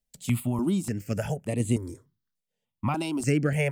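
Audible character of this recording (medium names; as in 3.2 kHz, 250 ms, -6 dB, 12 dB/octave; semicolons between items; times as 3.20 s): random-step tremolo 2.5 Hz; notches that jump at a steady rate 3.4 Hz 330–5400 Hz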